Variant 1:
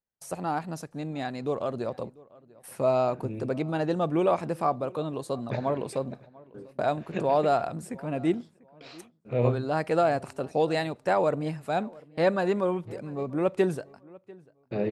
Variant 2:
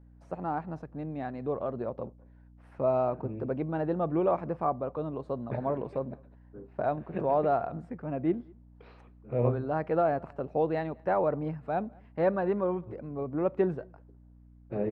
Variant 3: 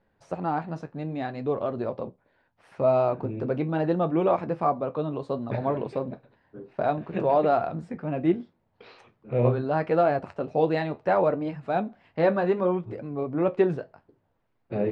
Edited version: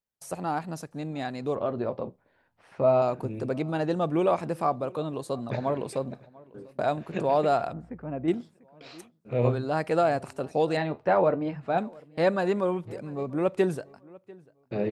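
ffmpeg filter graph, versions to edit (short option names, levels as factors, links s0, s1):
-filter_complex "[2:a]asplit=2[s0][s1];[0:a]asplit=4[s2][s3][s4][s5];[s2]atrim=end=1.562[s6];[s0]atrim=start=1.558:end=3.022[s7];[s3]atrim=start=3.018:end=7.732[s8];[1:a]atrim=start=7.728:end=8.282[s9];[s4]atrim=start=8.278:end=10.772[s10];[s1]atrim=start=10.768:end=11.782[s11];[s5]atrim=start=11.778[s12];[s6][s7]acrossfade=d=0.004:c1=hsin:c2=hsin[s13];[s13][s8]acrossfade=d=0.004:c1=hsin:c2=hsin[s14];[s14][s9]acrossfade=d=0.004:c1=hsin:c2=hsin[s15];[s15][s10]acrossfade=d=0.004:c1=hsin:c2=hsin[s16];[s16][s11]acrossfade=d=0.004:c1=hsin:c2=hsin[s17];[s17][s12]acrossfade=d=0.004:c1=hsin:c2=hsin"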